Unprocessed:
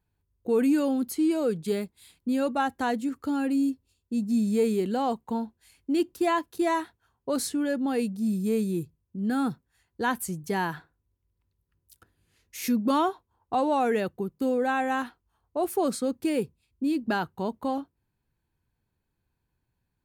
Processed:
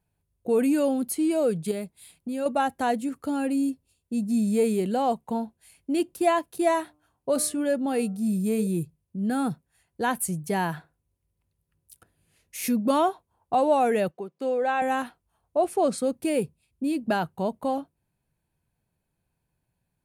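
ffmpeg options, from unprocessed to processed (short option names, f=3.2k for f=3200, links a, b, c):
-filter_complex "[0:a]asettb=1/sr,asplit=3[a][b][c];[a]atrim=end=1.714[d];[b]atrim=start=1.71:end=2.46,asetpts=PTS-STARTPTS,afade=t=in:d=0.004:c=qsin,afade=t=out:st=0.746:d=0.004:c=qsin,acompressor=threshold=-32dB:ratio=2:attack=3.2:release=140:knee=1:detection=peak[e];[c]atrim=start=2.456[f];[d][e]acrossfade=d=0.004:c1=hsin:c2=qsin[g];[g][f]acrossfade=d=0.004:c1=qsin:c2=hsin,asettb=1/sr,asplit=3[h][i][j];[h]atrim=end=6.684[k];[i]atrim=start=6.68:end=8.67,asetpts=PTS-STARTPTS,afade=t=in:d=0.004:c=qsin,afade=t=out:st=1.986:d=0.004:c=qsin,bandreject=f=150.4:t=h:w=4,bandreject=f=300.8:t=h:w=4,bandreject=f=451.2:t=h:w=4,bandreject=f=601.6:t=h:w=4,bandreject=f=752:t=h:w=4,bandreject=f=902.4:t=h:w=4,bandreject=f=1.0528k:t=h:w=4,bandreject=f=1.2032k:t=h:w=4,bandreject=f=1.3536k:t=h:w=4[l];[j]atrim=start=8.666[m];[k][l]acrossfade=d=0.004:c1=hsin:c2=qsin[n];[n][m]acrossfade=d=0.004:c1=qsin:c2=hsin,asettb=1/sr,asplit=3[o][p][q];[o]atrim=end=14.114[r];[p]atrim=start=14.11:end=14.82,asetpts=PTS-STARTPTS,afade=t=in:d=0.004:c=qsin,afade=t=out:st=0.706:d=0.004:c=qsin,highpass=390,lowpass=5.4k[s];[q]atrim=start=14.816[t];[r][s]acrossfade=d=0.004:c1=hsin:c2=qsin[u];[u][t]acrossfade=d=0.004:c1=qsin:c2=hsin,asettb=1/sr,asplit=3[v][w][x];[v]atrim=end=15.574[y];[w]atrim=start=15.57:end=15.98,asetpts=PTS-STARTPTS,afade=t=in:d=0.004:c=qsin,afade=t=out:st=0.406:d=0.004:c=qsin,lowpass=6.8k[z];[x]atrim=start=15.976[aa];[y][z]acrossfade=d=0.004:c1=hsin:c2=qsin[ab];[ab][aa]acrossfade=d=0.004:c1=qsin:c2=hsin,equalizer=f=160:t=o:w=0.67:g=7,equalizer=f=630:t=o:w=0.67:g=9,equalizer=f=2.5k:t=o:w=0.67:g=4,equalizer=f=10k:t=o:w=0.67:g=10,volume=-2dB"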